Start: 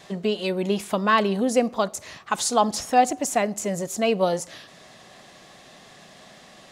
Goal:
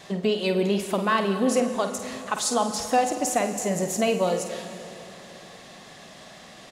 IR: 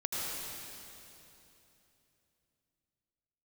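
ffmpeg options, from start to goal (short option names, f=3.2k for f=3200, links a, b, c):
-filter_complex "[0:a]alimiter=limit=-14dB:level=0:latency=1:release=445,asplit=2[a][b];[b]adelay=50,volume=-9dB[c];[a][c]amix=inputs=2:normalize=0,asplit=2[d][e];[1:a]atrim=start_sample=2205[f];[e][f]afir=irnorm=-1:irlink=0,volume=-12.5dB[g];[d][g]amix=inputs=2:normalize=0"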